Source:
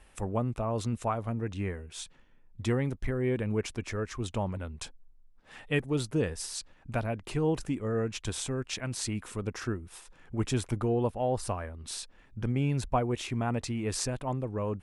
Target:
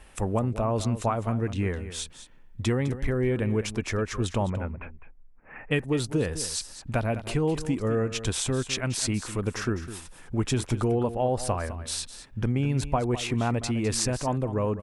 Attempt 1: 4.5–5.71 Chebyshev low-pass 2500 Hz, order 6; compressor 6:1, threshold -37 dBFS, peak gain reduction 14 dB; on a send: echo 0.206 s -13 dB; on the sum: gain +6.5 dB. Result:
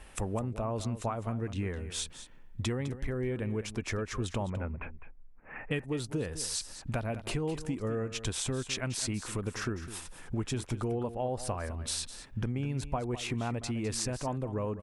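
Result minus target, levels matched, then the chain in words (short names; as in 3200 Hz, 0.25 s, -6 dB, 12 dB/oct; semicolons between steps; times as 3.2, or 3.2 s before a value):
compressor: peak gain reduction +8 dB
4.5–5.71 Chebyshev low-pass 2500 Hz, order 6; compressor 6:1, threshold -27.5 dBFS, peak gain reduction 6 dB; on a send: echo 0.206 s -13 dB; on the sum: gain +6.5 dB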